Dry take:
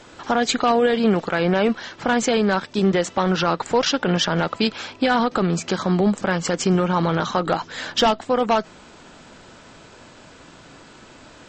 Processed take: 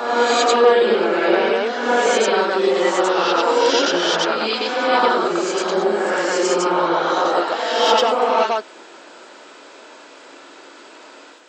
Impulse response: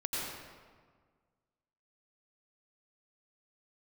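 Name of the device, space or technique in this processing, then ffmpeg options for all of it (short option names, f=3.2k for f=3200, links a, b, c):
ghost voice: -filter_complex "[0:a]areverse[a];[1:a]atrim=start_sample=2205[b];[a][b]afir=irnorm=-1:irlink=0,areverse,highpass=f=330:w=0.5412,highpass=f=330:w=1.3066"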